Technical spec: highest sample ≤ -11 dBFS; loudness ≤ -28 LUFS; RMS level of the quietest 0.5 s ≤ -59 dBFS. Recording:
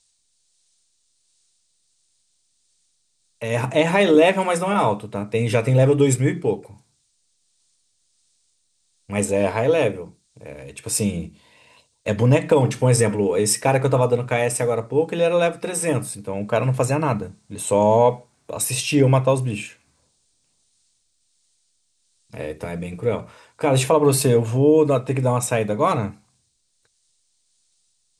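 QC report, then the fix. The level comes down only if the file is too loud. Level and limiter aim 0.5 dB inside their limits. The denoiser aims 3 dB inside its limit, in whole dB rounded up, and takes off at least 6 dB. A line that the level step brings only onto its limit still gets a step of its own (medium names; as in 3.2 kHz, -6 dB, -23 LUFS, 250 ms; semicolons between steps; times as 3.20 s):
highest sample -5.0 dBFS: fail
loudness -20.0 LUFS: fail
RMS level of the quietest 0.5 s -68 dBFS: pass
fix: trim -8.5 dB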